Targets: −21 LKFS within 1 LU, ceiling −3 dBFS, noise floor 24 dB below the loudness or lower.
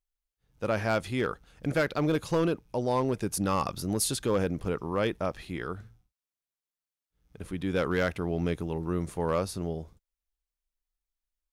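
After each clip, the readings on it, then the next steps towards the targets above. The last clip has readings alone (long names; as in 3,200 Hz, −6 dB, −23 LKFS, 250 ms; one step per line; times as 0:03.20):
share of clipped samples 0.7%; peaks flattened at −19.5 dBFS; integrated loudness −30.0 LKFS; sample peak −19.5 dBFS; target loudness −21.0 LKFS
→ clipped peaks rebuilt −19.5 dBFS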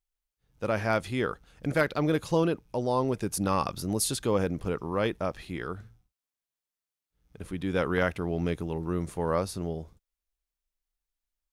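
share of clipped samples 0.0%; integrated loudness −29.5 LKFS; sample peak −10.5 dBFS; target loudness −21.0 LKFS
→ level +8.5 dB
brickwall limiter −3 dBFS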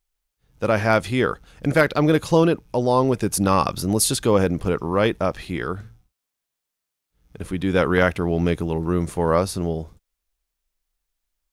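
integrated loudness −21.0 LKFS; sample peak −3.0 dBFS; background noise floor −83 dBFS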